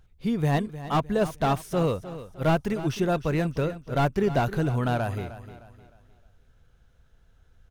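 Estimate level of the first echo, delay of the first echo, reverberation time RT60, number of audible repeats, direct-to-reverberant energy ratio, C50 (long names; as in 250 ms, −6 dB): −14.0 dB, 307 ms, no reverb audible, 3, no reverb audible, no reverb audible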